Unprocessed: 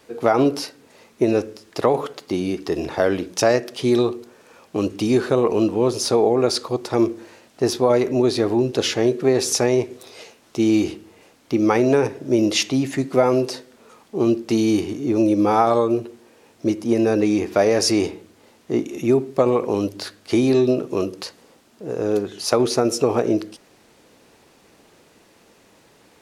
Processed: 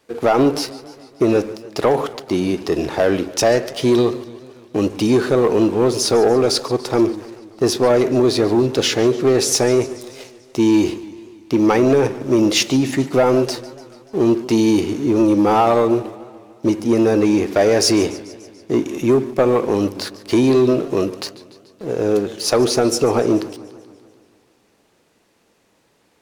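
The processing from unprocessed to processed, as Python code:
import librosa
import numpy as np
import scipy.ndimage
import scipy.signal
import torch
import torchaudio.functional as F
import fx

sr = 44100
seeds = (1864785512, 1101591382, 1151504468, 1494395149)

y = fx.leveller(x, sr, passes=2)
y = fx.echo_warbled(y, sr, ms=145, feedback_pct=62, rate_hz=2.8, cents=154, wet_db=-18.0)
y = F.gain(torch.from_numpy(y), -3.0).numpy()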